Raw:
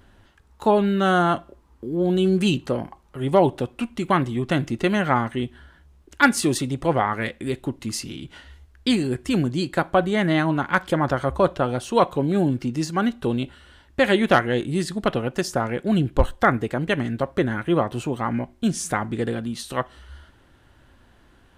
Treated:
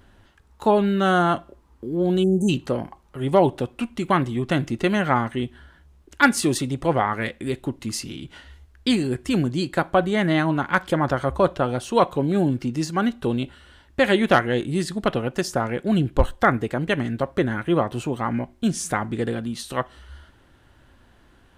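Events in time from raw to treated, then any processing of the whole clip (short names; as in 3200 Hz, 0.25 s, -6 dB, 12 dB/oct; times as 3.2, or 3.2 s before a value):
2.24–2.49 spectral delete 900–6000 Hz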